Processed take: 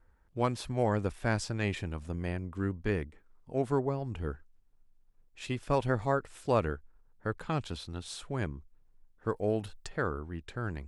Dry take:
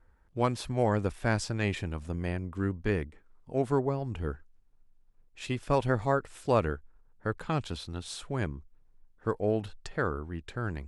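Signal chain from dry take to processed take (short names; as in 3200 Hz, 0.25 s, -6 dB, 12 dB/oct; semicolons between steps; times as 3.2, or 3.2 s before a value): 9.35–9.88 high shelf 6600 Hz -> 10000 Hz +11.5 dB; gain -2 dB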